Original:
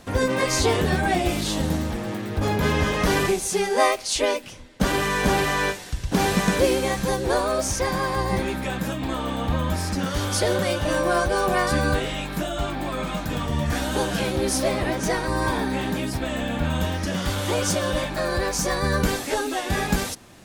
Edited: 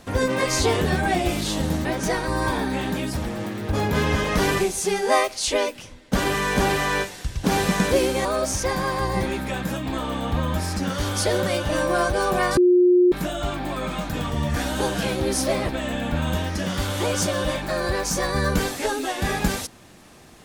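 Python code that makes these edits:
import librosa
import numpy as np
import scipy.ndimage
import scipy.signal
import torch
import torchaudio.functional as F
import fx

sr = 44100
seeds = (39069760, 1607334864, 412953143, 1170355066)

y = fx.edit(x, sr, fx.cut(start_s=6.93, length_s=0.48),
    fx.bleep(start_s=11.73, length_s=0.55, hz=358.0, db=-12.0),
    fx.move(start_s=14.85, length_s=1.32, to_s=1.85), tone=tone)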